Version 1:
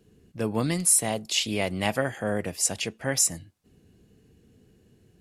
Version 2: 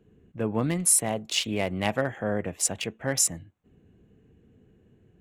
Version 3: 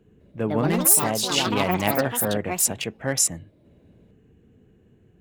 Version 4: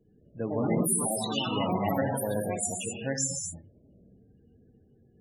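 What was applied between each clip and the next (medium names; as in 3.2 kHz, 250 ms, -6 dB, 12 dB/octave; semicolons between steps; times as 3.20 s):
local Wiener filter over 9 samples
ever faster or slower copies 206 ms, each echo +5 st, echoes 3; trim +2.5 dB
gated-style reverb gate 280 ms flat, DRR 0 dB; loudest bins only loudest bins 32; trim -7 dB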